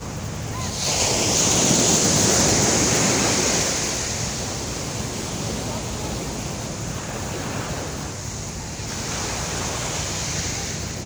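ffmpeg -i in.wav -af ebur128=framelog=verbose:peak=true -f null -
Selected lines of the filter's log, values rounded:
Integrated loudness:
  I:         -21.4 LUFS
  Threshold: -31.4 LUFS
Loudness range:
  LRA:        11.0 LU
  Threshold: -41.5 LUFS
  LRA low:   -28.1 LUFS
  LRA high:  -17.1 LUFS
True peak:
  Peak:       -5.4 dBFS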